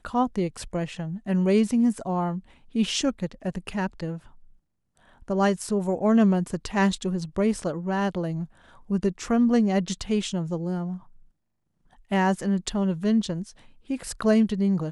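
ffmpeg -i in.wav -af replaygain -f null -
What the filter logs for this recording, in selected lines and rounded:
track_gain = +4.7 dB
track_peak = 0.234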